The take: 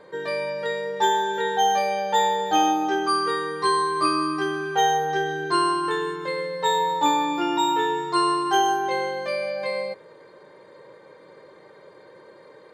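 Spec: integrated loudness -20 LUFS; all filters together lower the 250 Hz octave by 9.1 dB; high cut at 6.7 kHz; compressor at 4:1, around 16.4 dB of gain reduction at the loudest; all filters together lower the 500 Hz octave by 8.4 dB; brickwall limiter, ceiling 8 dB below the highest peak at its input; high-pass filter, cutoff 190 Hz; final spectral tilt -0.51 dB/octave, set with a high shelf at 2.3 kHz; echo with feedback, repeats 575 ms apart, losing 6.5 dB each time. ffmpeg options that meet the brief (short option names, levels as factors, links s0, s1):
-af "highpass=190,lowpass=6700,equalizer=f=250:t=o:g=-9,equalizer=f=500:t=o:g=-7,highshelf=f=2300:g=-5,acompressor=threshold=0.00891:ratio=4,alimiter=level_in=4.47:limit=0.0631:level=0:latency=1,volume=0.224,aecho=1:1:575|1150|1725|2300|2875|3450:0.473|0.222|0.105|0.0491|0.0231|0.0109,volume=15"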